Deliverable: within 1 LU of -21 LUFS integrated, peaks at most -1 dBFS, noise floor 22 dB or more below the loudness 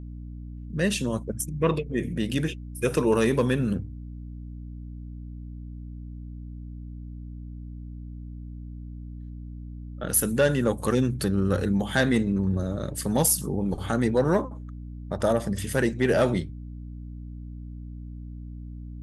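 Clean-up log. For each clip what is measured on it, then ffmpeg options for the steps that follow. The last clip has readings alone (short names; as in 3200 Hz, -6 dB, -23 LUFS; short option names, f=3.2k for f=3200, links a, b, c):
hum 60 Hz; harmonics up to 300 Hz; hum level -36 dBFS; loudness -25.5 LUFS; peak -8.5 dBFS; loudness target -21.0 LUFS
-> -af "bandreject=f=60:t=h:w=6,bandreject=f=120:t=h:w=6,bandreject=f=180:t=h:w=6,bandreject=f=240:t=h:w=6,bandreject=f=300:t=h:w=6"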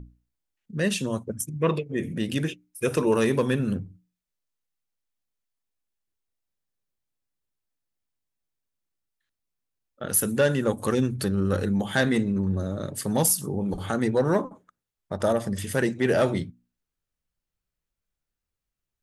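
hum none; loudness -25.5 LUFS; peak -8.5 dBFS; loudness target -21.0 LUFS
-> -af "volume=4.5dB"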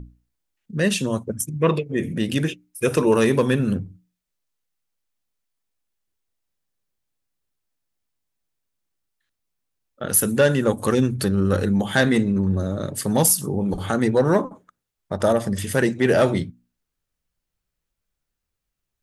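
loudness -21.0 LUFS; peak -4.0 dBFS; noise floor -82 dBFS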